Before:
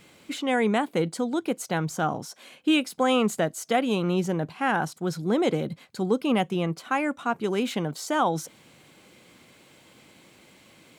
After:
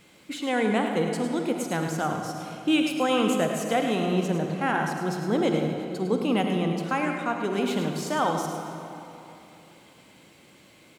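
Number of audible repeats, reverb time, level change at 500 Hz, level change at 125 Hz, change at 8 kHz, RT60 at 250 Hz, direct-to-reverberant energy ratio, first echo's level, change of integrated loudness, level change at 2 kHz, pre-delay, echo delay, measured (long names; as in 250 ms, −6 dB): 1, 2.9 s, 0.0 dB, +0.5 dB, −0.5 dB, 3.2 s, 2.5 dB, −8.5 dB, 0.0 dB, 0.0 dB, 40 ms, 105 ms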